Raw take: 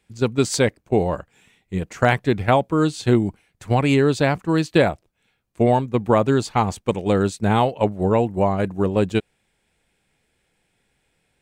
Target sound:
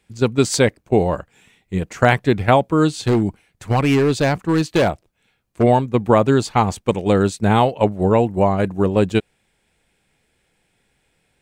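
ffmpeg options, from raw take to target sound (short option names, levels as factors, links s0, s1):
-filter_complex "[0:a]asplit=3[s0][s1][s2];[s0]afade=t=out:st=2.91:d=0.02[s3];[s1]volume=5.31,asoftclip=hard,volume=0.188,afade=t=in:st=2.91:d=0.02,afade=t=out:st=5.62:d=0.02[s4];[s2]afade=t=in:st=5.62:d=0.02[s5];[s3][s4][s5]amix=inputs=3:normalize=0,volume=1.41"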